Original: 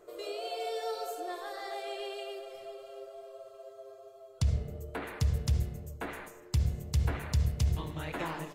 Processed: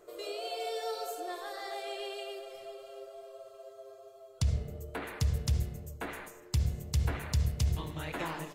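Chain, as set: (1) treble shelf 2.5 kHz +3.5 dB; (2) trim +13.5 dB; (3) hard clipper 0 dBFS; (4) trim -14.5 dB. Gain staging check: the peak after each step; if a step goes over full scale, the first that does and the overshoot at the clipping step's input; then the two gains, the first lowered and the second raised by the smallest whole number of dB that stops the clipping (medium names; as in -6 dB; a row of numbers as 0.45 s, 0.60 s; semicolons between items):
-16.5 dBFS, -3.0 dBFS, -3.0 dBFS, -17.5 dBFS; nothing clips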